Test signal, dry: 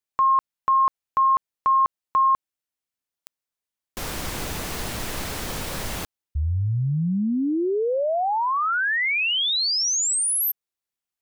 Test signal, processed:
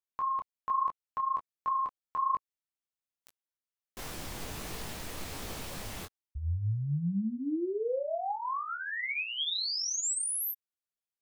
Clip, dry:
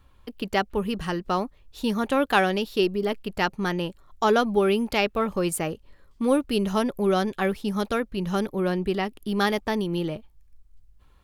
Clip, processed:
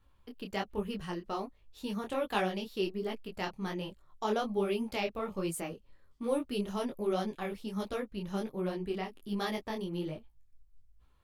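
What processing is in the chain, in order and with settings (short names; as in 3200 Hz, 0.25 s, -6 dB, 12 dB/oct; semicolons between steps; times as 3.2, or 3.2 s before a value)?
dynamic EQ 1500 Hz, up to -6 dB, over -41 dBFS, Q 3.2; detuned doubles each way 44 cents; gain -6.5 dB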